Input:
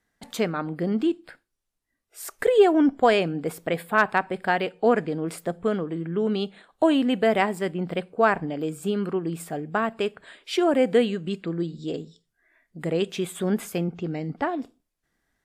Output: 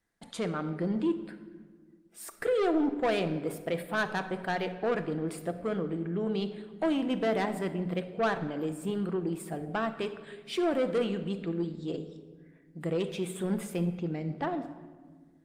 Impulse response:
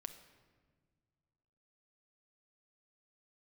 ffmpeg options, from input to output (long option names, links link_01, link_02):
-filter_complex "[0:a]equalizer=frequency=12000:width=7.1:gain=-12.5,asettb=1/sr,asplit=3[link_01][link_02][link_03];[link_01]atrim=end=2.614[link_04];[link_02]atrim=start=2.61:end=3.06,asetpts=PTS-STARTPTS,afade=type=in:duration=0.004:curve=qsin,afade=type=out:start_time=0.446:duration=0.004:curve=qsin,bandreject=frequency=1200:width=6.4[link_05];[link_03]atrim=start=3.056[link_06];[link_04][link_05]acrossfade=duration=0.004:curve1=hsin:curve2=qsin[link_07];[link_07][link_06]acrossfade=duration=0.004:curve1=qsin:curve2=hsin,asoftclip=type=tanh:threshold=-18.5dB[link_08];[1:a]atrim=start_sample=2205[link_09];[link_08][link_09]afir=irnorm=-1:irlink=0" -ar 48000 -c:a libopus -b:a 32k